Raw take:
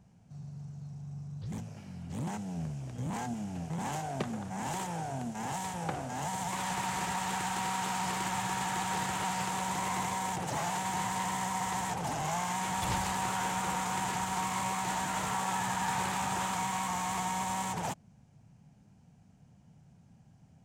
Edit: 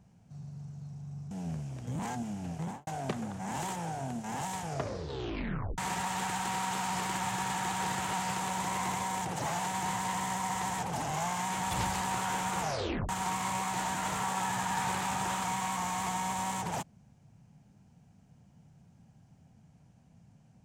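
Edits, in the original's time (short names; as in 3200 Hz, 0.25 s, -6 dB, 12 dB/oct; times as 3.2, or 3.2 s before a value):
1.31–2.42 cut
3.73–3.98 studio fade out
5.7 tape stop 1.19 s
13.7 tape stop 0.50 s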